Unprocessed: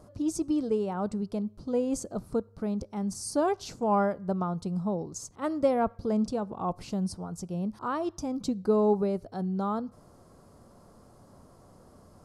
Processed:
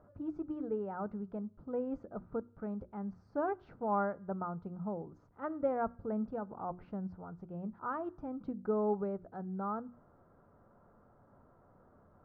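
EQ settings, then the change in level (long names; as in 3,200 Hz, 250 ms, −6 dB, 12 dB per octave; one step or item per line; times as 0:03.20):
transistor ladder low-pass 1,700 Hz, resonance 45%
mains-hum notches 60/120/180/240/300/360 Hz
notch filter 1,100 Hz, Q 9.2
0.0 dB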